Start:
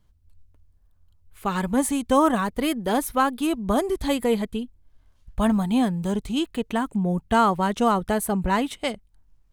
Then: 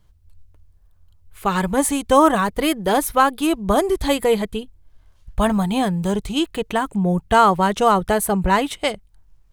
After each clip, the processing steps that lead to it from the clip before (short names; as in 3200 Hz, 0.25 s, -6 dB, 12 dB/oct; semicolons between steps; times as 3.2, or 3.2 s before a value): bell 240 Hz -12 dB 0.27 oct; gain +6 dB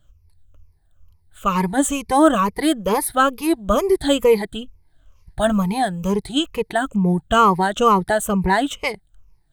moving spectral ripple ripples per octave 0.83, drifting -2.2 Hz, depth 15 dB; gain -3 dB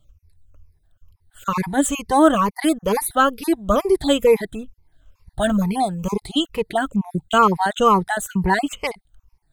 random spectral dropouts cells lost 24%